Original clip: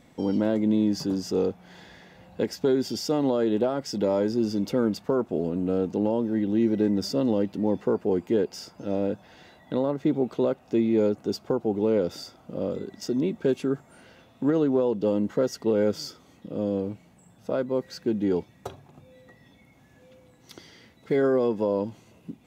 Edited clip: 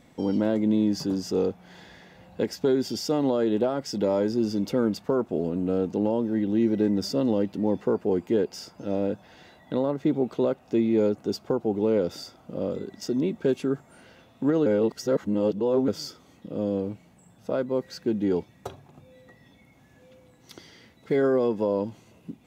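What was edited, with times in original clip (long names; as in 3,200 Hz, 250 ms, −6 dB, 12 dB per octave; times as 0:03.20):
0:14.66–0:15.88: reverse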